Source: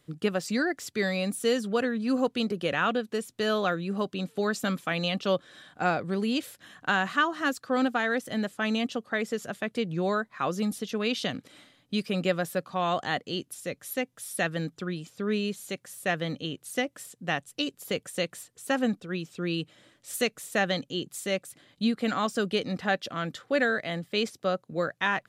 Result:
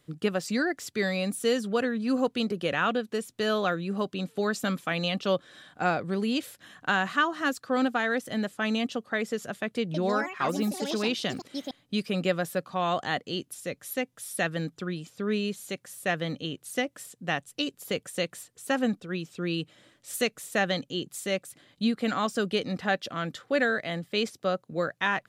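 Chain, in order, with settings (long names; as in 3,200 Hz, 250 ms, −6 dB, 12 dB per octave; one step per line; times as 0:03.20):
0:09.79–0:12.15: delay with pitch and tempo change per echo 152 ms, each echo +5 semitones, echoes 2, each echo −6 dB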